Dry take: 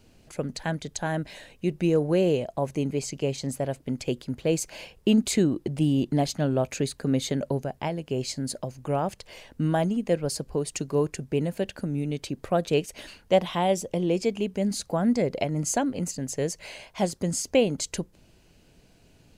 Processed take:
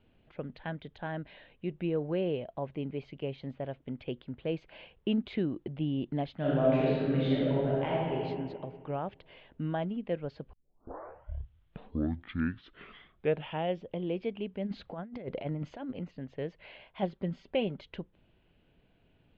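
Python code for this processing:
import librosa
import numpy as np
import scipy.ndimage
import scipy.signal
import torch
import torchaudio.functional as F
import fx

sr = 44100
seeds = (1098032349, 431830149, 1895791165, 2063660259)

y = fx.reverb_throw(x, sr, start_s=6.39, length_s=1.74, rt60_s=1.9, drr_db=-7.5)
y = fx.over_compress(y, sr, threshold_db=-28.0, ratio=-0.5, at=(14.66, 15.91), fade=0.02)
y = fx.comb(y, sr, ms=5.2, depth=0.49, at=(17.02, 17.81))
y = fx.edit(y, sr, fx.tape_start(start_s=10.53, length_s=3.38), tone=tone)
y = scipy.signal.sosfilt(scipy.signal.ellip(4, 1.0, 70, 3400.0, 'lowpass', fs=sr, output='sos'), y)
y = y * librosa.db_to_amplitude(-8.0)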